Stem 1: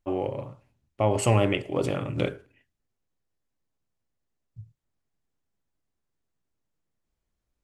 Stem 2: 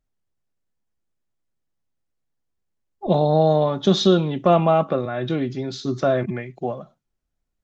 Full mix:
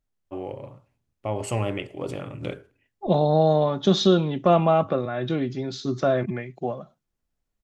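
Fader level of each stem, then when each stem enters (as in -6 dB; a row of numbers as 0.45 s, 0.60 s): -5.0 dB, -2.0 dB; 0.25 s, 0.00 s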